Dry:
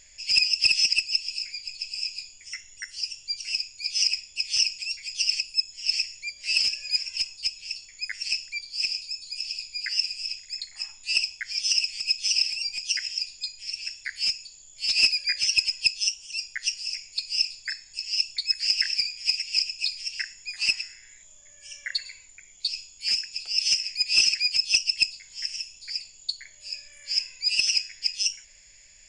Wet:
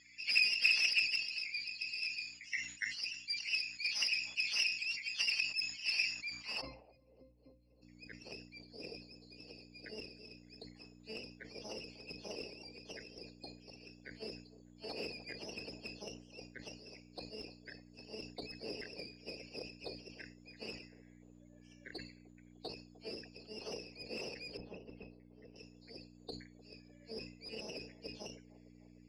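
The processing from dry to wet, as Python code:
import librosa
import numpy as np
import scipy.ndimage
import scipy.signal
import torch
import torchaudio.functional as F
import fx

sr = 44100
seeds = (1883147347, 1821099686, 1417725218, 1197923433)

p1 = fx.spec_quant(x, sr, step_db=30)
p2 = fx.peak_eq(p1, sr, hz=4200.0, db=8.5, octaves=0.51)
p3 = fx.tube_stage(p2, sr, drive_db=16.0, bias=0.45)
p4 = fx.add_hum(p3, sr, base_hz=60, snr_db=16)
p5 = fx.octave_resonator(p4, sr, note='C', decay_s=0.2, at=(6.6, 7.81), fade=0.02)
p6 = p5 + fx.echo_wet_bandpass(p5, sr, ms=302, feedback_pct=62, hz=530.0, wet_db=-17.5, dry=0)
p7 = fx.filter_sweep_bandpass(p6, sr, from_hz=2100.0, to_hz=460.0, start_s=6.04, end_s=7.14, q=2.6)
p8 = fx.spacing_loss(p7, sr, db_at_10k=42, at=(24.57, 25.56))
p9 = fx.sustainer(p8, sr, db_per_s=93.0)
y = F.gain(torch.from_numpy(p9), 2.5).numpy()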